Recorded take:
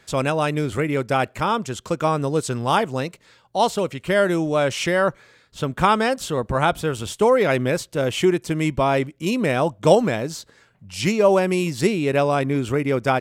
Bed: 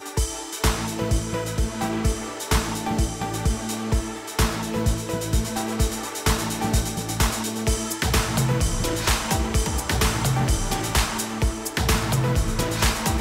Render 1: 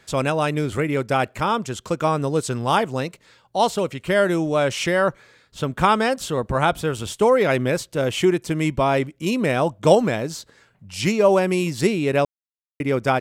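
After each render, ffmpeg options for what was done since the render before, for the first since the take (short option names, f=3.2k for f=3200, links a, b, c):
-filter_complex "[0:a]asplit=3[a][b][c];[a]atrim=end=12.25,asetpts=PTS-STARTPTS,afade=t=out:st=12.246:d=0.004:c=hsin[d];[b]atrim=start=12.25:end=12.8,asetpts=PTS-STARTPTS,volume=0[e];[c]atrim=start=12.8,asetpts=PTS-STARTPTS,afade=t=in:d=0.004:c=hsin[f];[d][e][f]concat=n=3:v=0:a=1"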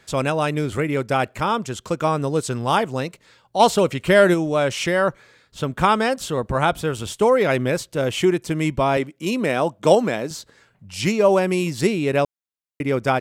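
-filter_complex "[0:a]asplit=3[a][b][c];[a]afade=t=out:st=3.59:d=0.02[d];[b]acontrast=35,afade=t=in:st=3.59:d=0.02,afade=t=out:st=4.33:d=0.02[e];[c]afade=t=in:st=4.33:d=0.02[f];[d][e][f]amix=inputs=3:normalize=0,asettb=1/sr,asplit=3[g][h][i];[g]atrim=end=8.974[j];[h]atrim=start=8.97:end=10.31,asetpts=PTS-STARTPTS,afade=t=in:d=0.004:c=qsin,afade=t=out:st=1.336:d=0.004:c=qsin,highpass=170[k];[i]atrim=start=10.306[l];[j][k]acrossfade=d=0.004:c1=hsin:c2=qsin[m];[m][l]acrossfade=d=0.004:c1=qsin:c2=hsin"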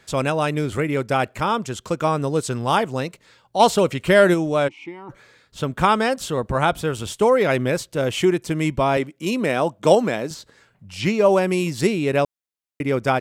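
-filter_complex "[0:a]asplit=3[a][b][c];[a]afade=t=out:st=4.67:d=0.02[d];[b]asplit=3[e][f][g];[e]bandpass=f=300:t=q:w=8,volume=0dB[h];[f]bandpass=f=870:t=q:w=8,volume=-6dB[i];[g]bandpass=f=2.24k:t=q:w=8,volume=-9dB[j];[h][i][j]amix=inputs=3:normalize=0,afade=t=in:st=4.67:d=0.02,afade=t=out:st=5.09:d=0.02[k];[c]afade=t=in:st=5.09:d=0.02[l];[d][k][l]amix=inputs=3:normalize=0,asettb=1/sr,asplit=3[m][n][o];[m]atrim=end=10.344[p];[n]atrim=start=10.34:end=11.26,asetpts=PTS-STARTPTS,afade=t=in:d=0.004:c=qsin,afade=t=out:st=0.916:d=0.004:c=qsin,acrossover=split=4700[q][r];[r]acompressor=threshold=-41dB:ratio=4:attack=1:release=60[s];[q][s]amix=inputs=2:normalize=0[t];[o]atrim=start=11.256[u];[p][t]acrossfade=d=0.004:c1=hsin:c2=qsin[v];[v][u]acrossfade=d=0.004:c1=qsin:c2=hsin"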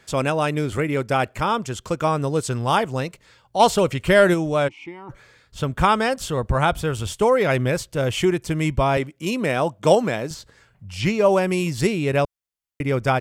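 -af "bandreject=f=3.9k:w=22,asubboost=boost=3:cutoff=120"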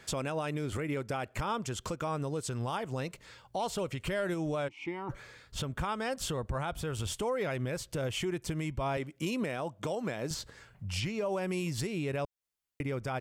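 -af "acompressor=threshold=-29dB:ratio=2.5,alimiter=level_in=0.5dB:limit=-24dB:level=0:latency=1:release=186,volume=-0.5dB"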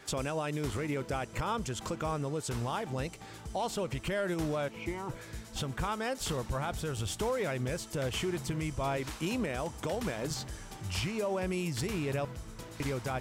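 -filter_complex "[1:a]volume=-21.5dB[a];[0:a][a]amix=inputs=2:normalize=0"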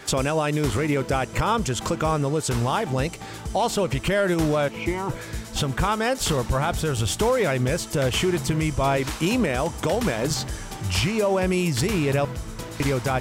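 -af "volume=11dB"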